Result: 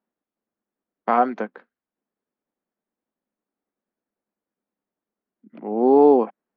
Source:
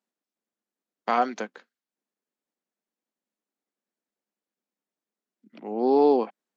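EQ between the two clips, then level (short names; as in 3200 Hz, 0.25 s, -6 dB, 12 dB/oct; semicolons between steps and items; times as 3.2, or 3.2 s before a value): LPF 1600 Hz 12 dB/oct; low shelf 140 Hz +5.5 dB; +5.0 dB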